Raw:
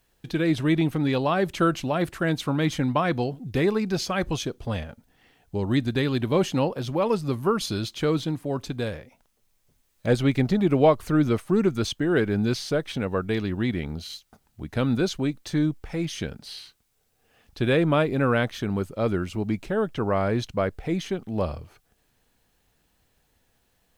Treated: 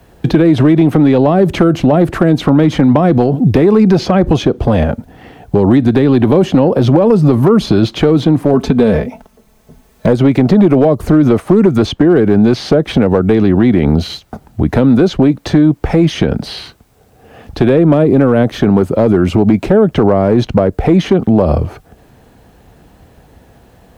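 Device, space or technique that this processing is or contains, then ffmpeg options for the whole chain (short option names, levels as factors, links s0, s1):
mastering chain: -filter_complex "[0:a]asettb=1/sr,asplit=3[s0][s1][s2];[s0]atrim=end=8.534[s3];[s1]atrim=start=8.53:end=10.07,asetpts=PTS-STARTPTS,afade=t=in:d=0.004:c=qsin,afade=t=out:st=1.536:d=0.004:c=qsin,aecho=1:1:4.6:0.67,atrim=end_sample=67914[s4];[s2]atrim=start=10.066[s5];[s3][s4]acrossfade=d=0.004:c1=hsin:c2=qsin[s6];[s6][s5]acrossfade=d=0.004:c1=qsin:c2=hsin,highpass=46,equalizer=f=710:t=o:w=0.39:g=2.5,acrossover=split=190|530|4700[s7][s8][s9][s10];[s7]acompressor=threshold=0.0112:ratio=4[s11];[s8]acompressor=threshold=0.0501:ratio=4[s12];[s9]acompressor=threshold=0.02:ratio=4[s13];[s10]acompressor=threshold=0.00282:ratio=4[s14];[s11][s12][s13][s14]amix=inputs=4:normalize=0,acompressor=threshold=0.0398:ratio=2.5,asoftclip=type=tanh:threshold=0.0944,tiltshelf=f=1500:g=8,asoftclip=type=hard:threshold=0.133,alimiter=level_in=11.9:limit=0.891:release=50:level=0:latency=1,volume=0.891"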